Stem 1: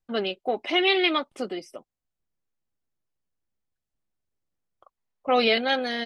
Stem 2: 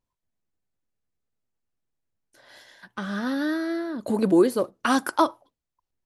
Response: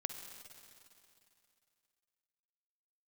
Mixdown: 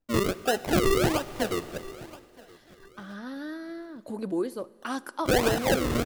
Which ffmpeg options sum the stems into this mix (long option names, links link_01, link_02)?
-filter_complex "[0:a]acrusher=samples=38:mix=1:aa=0.000001:lfo=1:lforange=38:lforate=1.4,volume=0dB,asplit=3[link_01][link_02][link_03];[link_02]volume=-6dB[link_04];[link_03]volume=-21dB[link_05];[1:a]volume=-12.5dB,asplit=2[link_06][link_07];[link_07]volume=-12.5dB[link_08];[2:a]atrim=start_sample=2205[link_09];[link_04][link_08]amix=inputs=2:normalize=0[link_10];[link_10][link_09]afir=irnorm=-1:irlink=0[link_11];[link_05]aecho=0:1:972|1944|2916|3888:1|0.27|0.0729|0.0197[link_12];[link_01][link_06][link_11][link_12]amix=inputs=4:normalize=0,alimiter=limit=-15dB:level=0:latency=1:release=296"